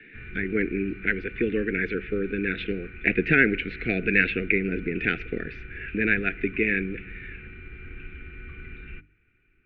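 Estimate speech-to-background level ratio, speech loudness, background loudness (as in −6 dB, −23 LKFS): 17.0 dB, −25.5 LKFS, −42.5 LKFS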